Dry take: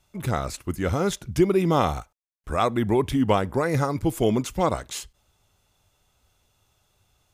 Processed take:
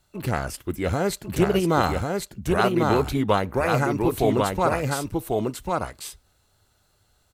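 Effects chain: formant shift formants +3 st; delay 1095 ms -3 dB

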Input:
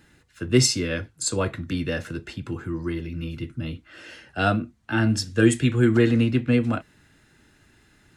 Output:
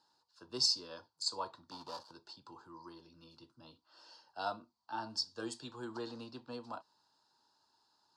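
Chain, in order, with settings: 1.71–2.11 s: dead-time distortion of 0.24 ms; two resonant band-passes 2.1 kHz, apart 2.3 oct

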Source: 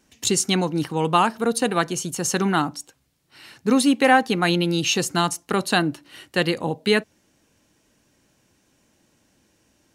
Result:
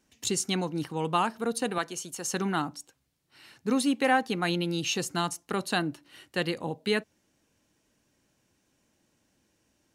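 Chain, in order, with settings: 1.78–2.33 s: high-pass 410 Hz 6 dB/octave; trim -8 dB

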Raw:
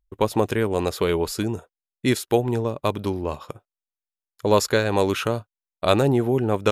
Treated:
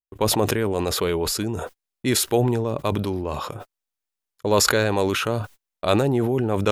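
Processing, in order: gate -46 dBFS, range -32 dB; decay stretcher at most 27 dB/s; trim -2 dB

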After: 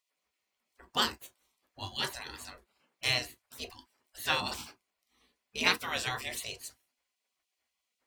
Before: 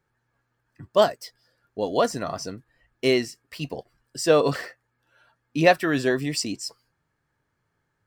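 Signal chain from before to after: spectral gate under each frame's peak -20 dB weak; on a send: reverberation, pre-delay 3 ms, DRR 8 dB; on the sum: trim +2.5 dB

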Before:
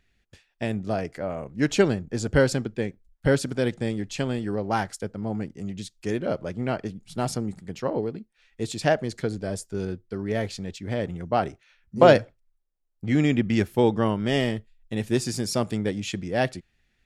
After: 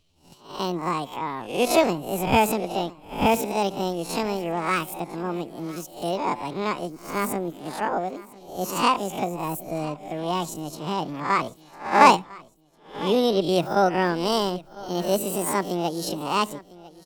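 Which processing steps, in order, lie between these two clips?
reverse spectral sustain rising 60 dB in 0.44 s; pitch shift +8.5 st; feedback delay 1002 ms, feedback 35%, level -20 dB

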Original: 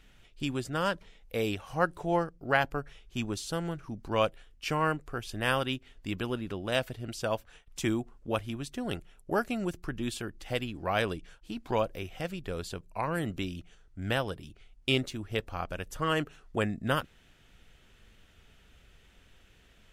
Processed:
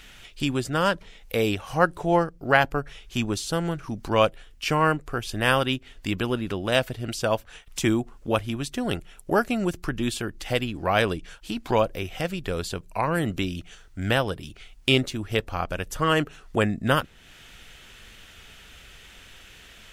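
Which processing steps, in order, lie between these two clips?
tape noise reduction on one side only encoder only; trim +7 dB

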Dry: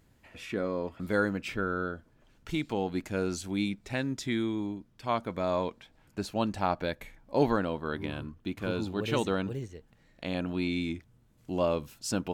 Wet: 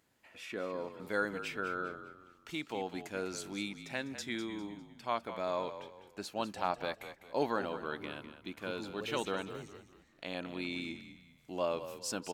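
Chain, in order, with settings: high-pass 530 Hz 6 dB/octave; on a send: frequency-shifting echo 201 ms, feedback 36%, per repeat -40 Hz, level -11.5 dB; on the sum: trim -3 dB

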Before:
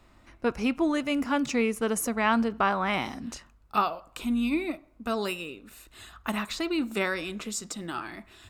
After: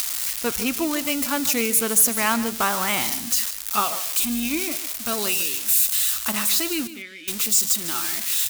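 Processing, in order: zero-crossing glitches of -21 dBFS; treble shelf 2.3 kHz +8 dB; upward compressor, threshold -23 dBFS; 6.87–7.28 s: vowel filter i; on a send: delay 149 ms -14 dB

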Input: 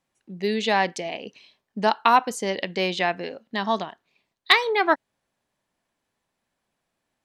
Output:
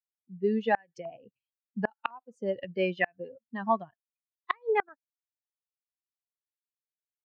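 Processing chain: expander on every frequency bin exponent 2; LFO low-pass saw up 0.95 Hz 960–2000 Hz; inverted gate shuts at -13 dBFS, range -35 dB

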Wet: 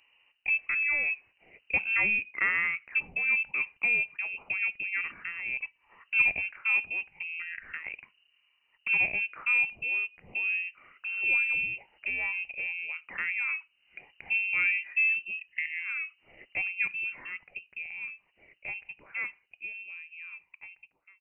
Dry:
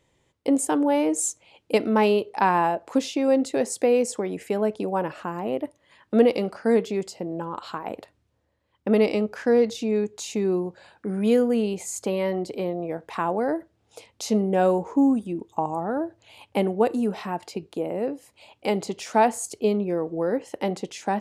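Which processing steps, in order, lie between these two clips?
fade out at the end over 5.89 s; frequency inversion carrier 2.9 kHz; tape noise reduction on one side only encoder only; trim -7 dB

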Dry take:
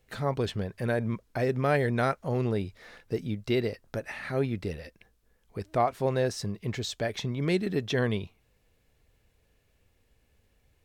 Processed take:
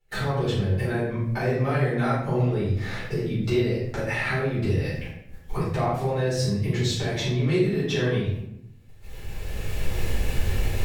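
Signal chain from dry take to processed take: recorder AGC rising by 16 dB/s; gate -51 dBFS, range -15 dB; compression 2.5:1, threshold -37 dBFS, peak gain reduction 11.5 dB; simulated room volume 190 m³, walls mixed, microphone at 4.2 m; trim -1.5 dB

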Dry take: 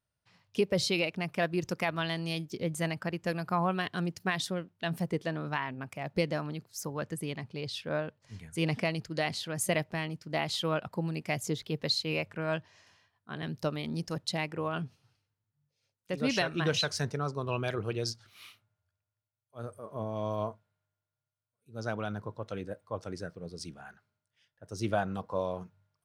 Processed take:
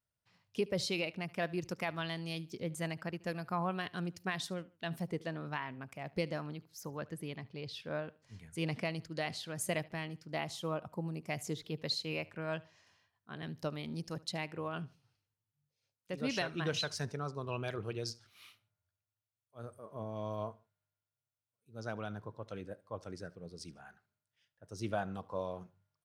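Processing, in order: 6.54–7.80 s: peaking EQ 8.4 kHz -7 dB 0.86 oct; 10.44–11.30 s: time-frequency box 1.3–5.2 kHz -7 dB; feedback delay 74 ms, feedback 33%, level -22 dB; trim -6 dB

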